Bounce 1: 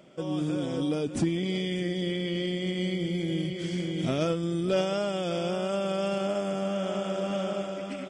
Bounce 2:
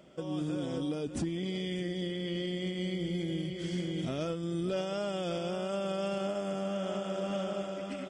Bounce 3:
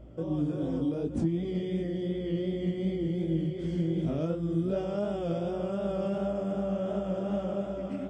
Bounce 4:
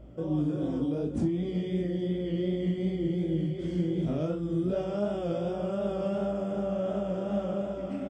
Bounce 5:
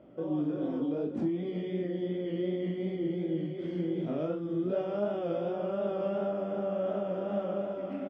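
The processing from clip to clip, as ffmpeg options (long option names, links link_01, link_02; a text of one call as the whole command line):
ffmpeg -i in.wav -af "equalizer=frequency=64:width=5.1:gain=11,bandreject=frequency=2300:width=18,alimiter=limit=-22.5dB:level=0:latency=1:release=448,volume=-2.5dB" out.wav
ffmpeg -i in.wav -af "aeval=exprs='val(0)+0.00224*(sin(2*PI*60*n/s)+sin(2*PI*2*60*n/s)/2+sin(2*PI*3*60*n/s)/3+sin(2*PI*4*60*n/s)/4+sin(2*PI*5*60*n/s)/5)':channel_layout=same,flanger=delay=18.5:depth=6.4:speed=2.7,tiltshelf=frequency=1200:gain=8.5" out.wav
ffmpeg -i in.wav -filter_complex "[0:a]asplit=2[link_01][link_02];[link_02]adelay=39,volume=-7dB[link_03];[link_01][link_03]amix=inputs=2:normalize=0" out.wav
ffmpeg -i in.wav -af "highpass=240,lowpass=2900" out.wav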